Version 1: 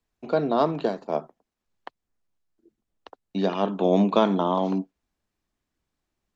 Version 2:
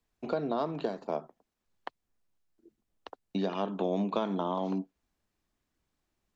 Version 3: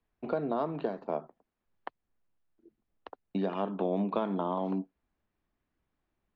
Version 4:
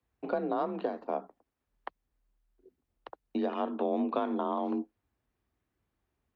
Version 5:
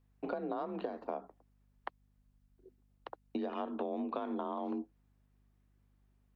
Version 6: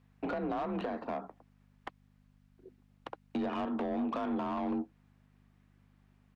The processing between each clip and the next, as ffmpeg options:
-af "acompressor=threshold=0.0316:ratio=3"
-af "lowpass=2500"
-af "afreqshift=38"
-af "aeval=exprs='val(0)+0.000355*(sin(2*PI*50*n/s)+sin(2*PI*2*50*n/s)/2+sin(2*PI*3*50*n/s)/3+sin(2*PI*4*50*n/s)/4+sin(2*PI*5*50*n/s)/5)':c=same,acompressor=threshold=0.02:ratio=6"
-filter_complex "[0:a]firequalizer=gain_entry='entry(170,0);entry(380,-12);entry(2200,-5)':delay=0.05:min_phase=1,asplit=2[s0][s1];[s1]highpass=f=720:p=1,volume=28.2,asoftclip=type=tanh:threshold=0.0668[s2];[s0][s2]amix=inputs=2:normalize=0,lowpass=f=1200:p=1,volume=0.501"

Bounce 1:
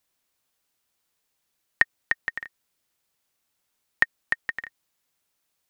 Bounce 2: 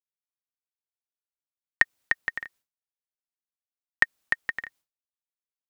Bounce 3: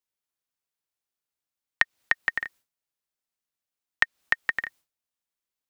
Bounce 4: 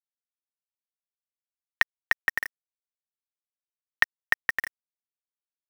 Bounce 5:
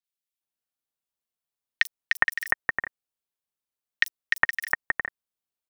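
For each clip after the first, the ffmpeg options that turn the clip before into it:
-af "agate=range=0.0224:threshold=0.00282:ratio=3:detection=peak"
-filter_complex "[0:a]acrossover=split=480|2100|5600[s0][s1][s2][s3];[s0]acompressor=threshold=0.00355:ratio=4[s4];[s1]acompressor=threshold=0.0355:ratio=4[s5];[s2]acompressor=threshold=0.0316:ratio=4[s6];[s3]acompressor=threshold=0.00112:ratio=4[s7];[s4][s5][s6][s7]amix=inputs=4:normalize=0,volume=1.88"
-af "acrusher=bits=5:mix=0:aa=0.000001"
-filter_complex "[0:a]acrossover=split=1900|6000[s0][s1][s2];[s2]adelay=40[s3];[s0]adelay=410[s4];[s4][s1][s3]amix=inputs=3:normalize=0,volume=1.78"

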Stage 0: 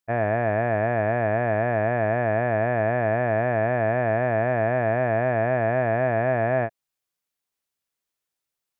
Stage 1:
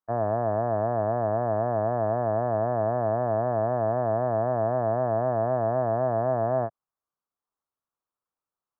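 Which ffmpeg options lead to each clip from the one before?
-filter_complex "[0:a]acrossover=split=2600[s0][s1];[s1]acompressor=threshold=0.00251:ratio=4:attack=1:release=60[s2];[s0][s2]amix=inputs=2:normalize=0,highshelf=f=1700:t=q:w=3:g=-13,acrossover=split=150|1200[s3][s4][s5];[s5]alimiter=level_in=2.99:limit=0.0631:level=0:latency=1:release=46,volume=0.335[s6];[s3][s4][s6]amix=inputs=3:normalize=0,volume=0.631"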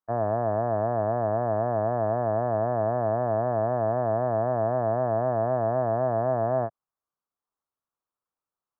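-af anull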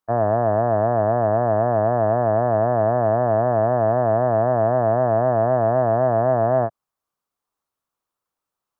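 -af "acontrast=80"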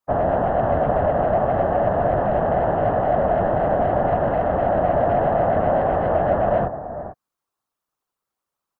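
-filter_complex "[0:a]asplit=2[s0][s1];[s1]adelay=443.1,volume=0.251,highshelf=f=4000:g=-9.97[s2];[s0][s2]amix=inputs=2:normalize=0,acontrast=89,afftfilt=real='hypot(re,im)*cos(2*PI*random(0))':imag='hypot(re,im)*sin(2*PI*random(1))':win_size=512:overlap=0.75,volume=0.891"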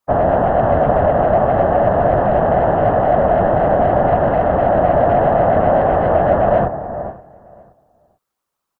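-filter_complex "[0:a]asplit=2[s0][s1];[s1]adelay=523,lowpass=f=2500:p=1,volume=0.0891,asplit=2[s2][s3];[s3]adelay=523,lowpass=f=2500:p=1,volume=0.32[s4];[s0][s2][s4]amix=inputs=3:normalize=0,volume=1.88"

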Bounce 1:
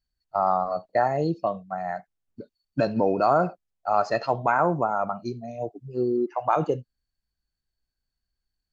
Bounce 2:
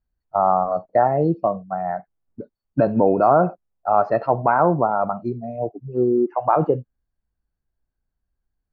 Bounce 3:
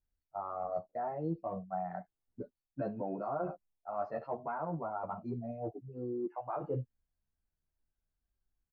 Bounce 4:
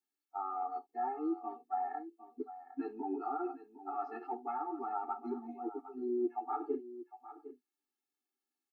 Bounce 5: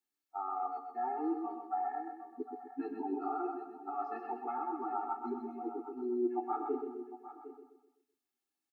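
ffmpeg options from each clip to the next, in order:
-af "lowpass=1200,volume=2"
-filter_complex "[0:a]areverse,acompressor=threshold=0.0447:ratio=5,areverse,asplit=2[s0][s1];[s1]adelay=11,afreqshift=0.27[s2];[s0][s2]amix=inputs=2:normalize=1,volume=0.596"
-af "aecho=1:1:757:0.2,afftfilt=real='re*eq(mod(floor(b*sr/1024/230),2),1)':imag='im*eq(mod(floor(b*sr/1024/230),2),1)':win_size=1024:overlap=0.75,volume=1.58"
-af "aecho=1:1:127|254|381|508|635:0.501|0.216|0.0927|0.0398|0.0171"

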